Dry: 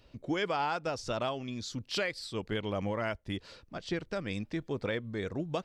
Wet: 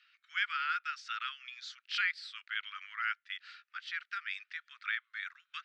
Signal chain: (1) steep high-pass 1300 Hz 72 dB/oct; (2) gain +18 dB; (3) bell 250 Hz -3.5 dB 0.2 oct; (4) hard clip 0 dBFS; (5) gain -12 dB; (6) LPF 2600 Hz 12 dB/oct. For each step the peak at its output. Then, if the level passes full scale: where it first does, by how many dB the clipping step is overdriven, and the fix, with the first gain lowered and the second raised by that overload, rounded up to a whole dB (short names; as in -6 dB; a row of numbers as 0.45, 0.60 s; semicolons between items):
-23.5, -5.5, -5.5, -5.5, -17.5, -19.5 dBFS; no overload